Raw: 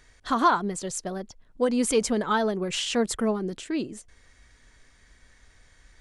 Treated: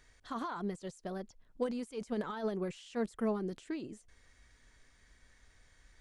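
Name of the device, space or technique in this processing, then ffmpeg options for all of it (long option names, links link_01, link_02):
de-esser from a sidechain: -filter_complex "[0:a]asplit=2[link_01][link_02];[link_02]highpass=4500,apad=whole_len=264898[link_03];[link_01][link_03]sidechaincompress=threshold=-50dB:ratio=6:attack=1.4:release=42,volume=-7dB"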